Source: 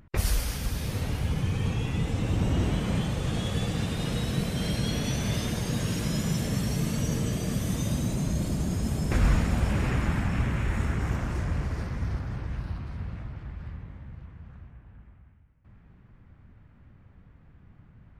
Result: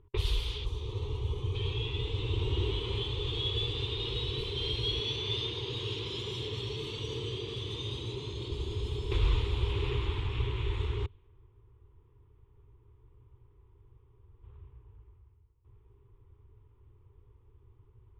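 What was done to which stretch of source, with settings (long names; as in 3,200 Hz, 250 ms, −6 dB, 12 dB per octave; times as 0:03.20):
0:00.65–0:01.55: gain on a spectral selection 1,300–5,500 Hz −9 dB
0:05.00–0:08.51: high-pass filter 100 Hz
0:11.06–0:14.43: fill with room tone
whole clip: high-shelf EQ 9,200 Hz −9.5 dB; low-pass that shuts in the quiet parts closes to 1,300 Hz, open at −22.5 dBFS; drawn EQ curve 120 Hz 0 dB, 160 Hz −21 dB, 240 Hz −18 dB, 410 Hz +10 dB, 640 Hz −21 dB, 970 Hz +2 dB, 1,600 Hz −14 dB, 3,500 Hz +14 dB, 5,300 Hz −8 dB, 13,000 Hz −11 dB; level −4 dB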